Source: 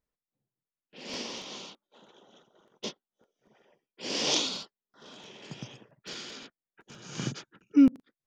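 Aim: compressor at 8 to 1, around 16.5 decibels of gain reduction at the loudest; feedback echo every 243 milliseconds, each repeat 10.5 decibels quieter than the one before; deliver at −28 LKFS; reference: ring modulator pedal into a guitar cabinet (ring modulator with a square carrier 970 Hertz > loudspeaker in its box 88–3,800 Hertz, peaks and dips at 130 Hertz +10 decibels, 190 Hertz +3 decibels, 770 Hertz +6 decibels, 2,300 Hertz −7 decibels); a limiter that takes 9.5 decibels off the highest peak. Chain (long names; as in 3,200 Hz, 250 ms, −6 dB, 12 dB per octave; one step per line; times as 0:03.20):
downward compressor 8 to 1, threshold −32 dBFS
brickwall limiter −30.5 dBFS
repeating echo 243 ms, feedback 30%, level −10.5 dB
ring modulator with a square carrier 970 Hz
loudspeaker in its box 88–3,800 Hz, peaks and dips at 130 Hz +10 dB, 190 Hz +3 dB, 770 Hz +6 dB, 2,300 Hz −7 dB
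level +16 dB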